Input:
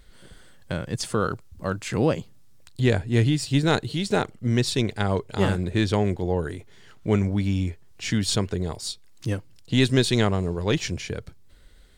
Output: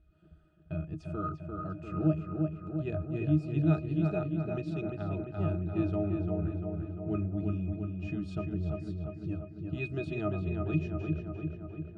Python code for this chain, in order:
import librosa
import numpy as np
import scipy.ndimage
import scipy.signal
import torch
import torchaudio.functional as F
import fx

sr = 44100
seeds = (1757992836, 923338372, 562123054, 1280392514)

y = fx.octave_resonator(x, sr, note='D#', decay_s=0.13)
y = fx.echo_filtered(y, sr, ms=346, feedback_pct=65, hz=3200.0, wet_db=-4)